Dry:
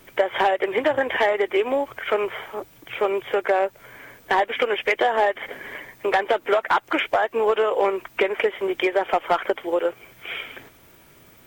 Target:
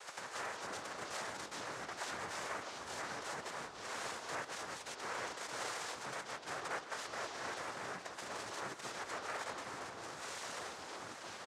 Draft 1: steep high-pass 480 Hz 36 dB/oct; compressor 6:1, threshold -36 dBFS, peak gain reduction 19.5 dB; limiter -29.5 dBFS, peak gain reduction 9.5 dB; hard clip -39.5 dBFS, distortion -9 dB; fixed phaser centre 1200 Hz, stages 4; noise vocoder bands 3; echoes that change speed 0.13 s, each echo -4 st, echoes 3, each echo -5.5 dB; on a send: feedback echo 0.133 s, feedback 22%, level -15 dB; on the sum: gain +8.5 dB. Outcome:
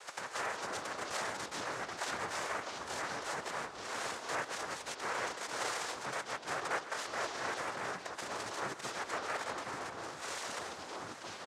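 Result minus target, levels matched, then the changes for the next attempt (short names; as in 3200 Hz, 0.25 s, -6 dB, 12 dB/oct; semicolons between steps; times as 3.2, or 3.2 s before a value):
hard clip: distortion -5 dB
change: hard clip -46 dBFS, distortion -5 dB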